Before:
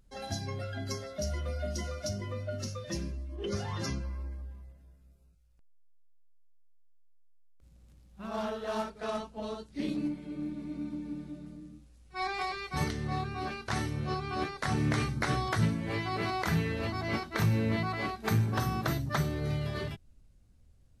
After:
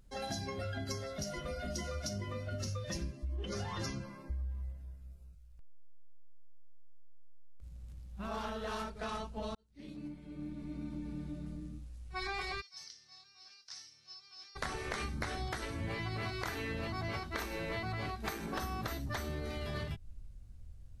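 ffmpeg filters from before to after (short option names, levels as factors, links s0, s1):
-filter_complex "[0:a]asplit=3[s0][s1][s2];[s0]afade=t=out:st=12.6:d=0.02[s3];[s1]bandpass=f=5300:t=q:w=7.2,afade=t=in:st=12.6:d=0.02,afade=t=out:st=14.55:d=0.02[s4];[s2]afade=t=in:st=14.55:d=0.02[s5];[s3][s4][s5]amix=inputs=3:normalize=0,asplit=2[s6][s7];[s6]atrim=end=9.55,asetpts=PTS-STARTPTS,afade=t=out:st=9.546:d=0.004:c=hsin[s8];[s7]atrim=start=9.55,asetpts=PTS-STARTPTS,afade=t=in:d=2.07[s9];[s8][s9]concat=n=2:v=0:a=1,afftfilt=real='re*lt(hypot(re,im),0.141)':imag='im*lt(hypot(re,im),0.141)':win_size=1024:overlap=0.75,asubboost=boost=2.5:cutoff=140,acompressor=threshold=0.0141:ratio=6,volume=1.26"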